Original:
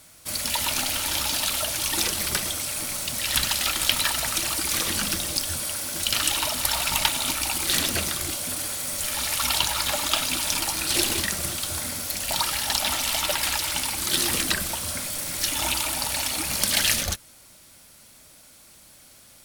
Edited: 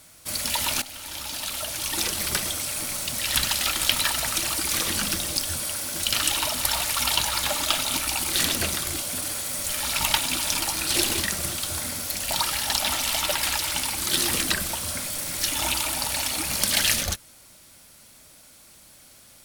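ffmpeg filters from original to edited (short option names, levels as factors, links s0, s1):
-filter_complex "[0:a]asplit=6[s0][s1][s2][s3][s4][s5];[s0]atrim=end=0.82,asetpts=PTS-STARTPTS,afade=t=out:st=0.816:d=0.004:c=hsin:silence=0.177828[s6];[s1]atrim=start=0.82:end=6.852,asetpts=PTS-STARTPTS,afade=t=in:d=1.53:silence=0.177828[s7];[s2]atrim=start=9.278:end=10.282[s8];[s3]atrim=start=7.188:end=9.282[s9];[s4]atrim=start=6.848:end=7.192[s10];[s5]atrim=start=10.278[s11];[s6][s7]concat=n=2:v=0:a=1[s12];[s12][s8]acrossfade=d=0.004:c1=hsin:c2=hsin[s13];[s13][s9]acrossfade=d=0.004:c1=hsin:c2=hsin[s14];[s14][s10]acrossfade=d=0.004:c1=hsin:c2=hsin[s15];[s15][s11]acrossfade=d=0.004:c1=hsin:c2=hsin"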